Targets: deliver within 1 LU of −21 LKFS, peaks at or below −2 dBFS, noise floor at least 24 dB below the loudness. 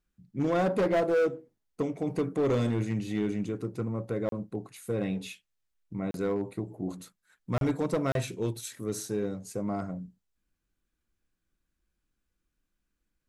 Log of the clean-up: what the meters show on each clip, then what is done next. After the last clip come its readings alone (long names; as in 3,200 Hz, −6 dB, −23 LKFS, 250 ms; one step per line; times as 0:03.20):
share of clipped samples 1.8%; peaks flattened at −21.5 dBFS; number of dropouts 4; longest dropout 32 ms; integrated loudness −31.0 LKFS; sample peak −21.5 dBFS; target loudness −21.0 LKFS
→ clipped peaks rebuilt −21.5 dBFS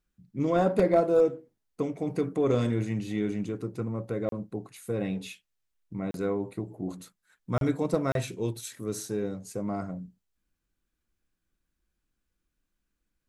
share of clipped samples 0.0%; number of dropouts 4; longest dropout 32 ms
→ repair the gap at 0:04.29/0:06.11/0:07.58/0:08.12, 32 ms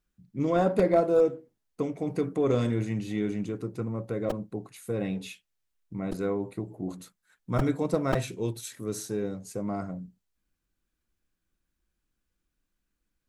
number of dropouts 0; integrated loudness −29.5 LKFS; sample peak −12.0 dBFS; target loudness −21.0 LKFS
→ level +8.5 dB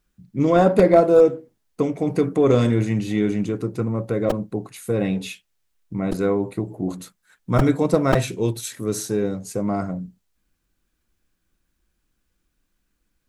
integrated loudness −21.0 LKFS; sample peak −3.5 dBFS; background noise floor −74 dBFS